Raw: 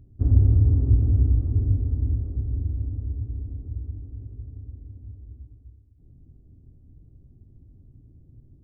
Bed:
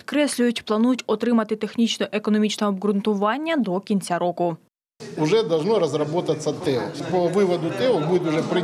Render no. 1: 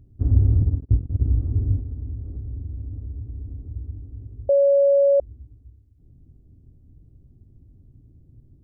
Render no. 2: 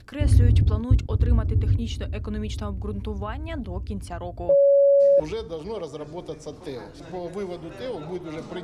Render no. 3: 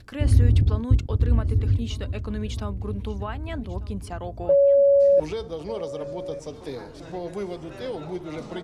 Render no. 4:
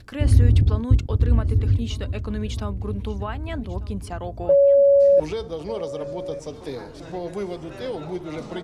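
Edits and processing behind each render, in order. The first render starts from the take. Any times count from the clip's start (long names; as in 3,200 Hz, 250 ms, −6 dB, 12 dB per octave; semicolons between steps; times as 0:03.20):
0:00.62–0:01.26: noise gate −18 dBFS, range −40 dB; 0:01.79–0:03.76: downward compressor 3 to 1, threshold −29 dBFS; 0:04.49–0:05.20: beep over 560 Hz −13 dBFS
mix in bed −12.5 dB
single-tap delay 1,195 ms −18.5 dB
level +2 dB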